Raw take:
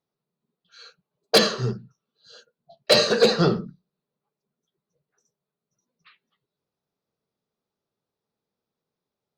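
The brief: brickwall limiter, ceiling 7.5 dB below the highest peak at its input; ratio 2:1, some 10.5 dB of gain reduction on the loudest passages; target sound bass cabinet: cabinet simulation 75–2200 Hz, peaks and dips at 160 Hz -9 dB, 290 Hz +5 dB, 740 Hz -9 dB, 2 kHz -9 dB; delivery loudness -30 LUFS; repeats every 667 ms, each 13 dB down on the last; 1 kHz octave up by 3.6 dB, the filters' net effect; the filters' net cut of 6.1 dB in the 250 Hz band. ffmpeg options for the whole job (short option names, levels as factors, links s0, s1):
-af "equalizer=f=250:t=o:g=-9,equalizer=f=1000:t=o:g=9,acompressor=threshold=0.0282:ratio=2,alimiter=limit=0.1:level=0:latency=1,highpass=f=75:w=0.5412,highpass=f=75:w=1.3066,equalizer=f=160:t=q:w=4:g=-9,equalizer=f=290:t=q:w=4:g=5,equalizer=f=740:t=q:w=4:g=-9,equalizer=f=2000:t=q:w=4:g=-9,lowpass=f=2200:w=0.5412,lowpass=f=2200:w=1.3066,aecho=1:1:667|1334|2001:0.224|0.0493|0.0108,volume=2.37"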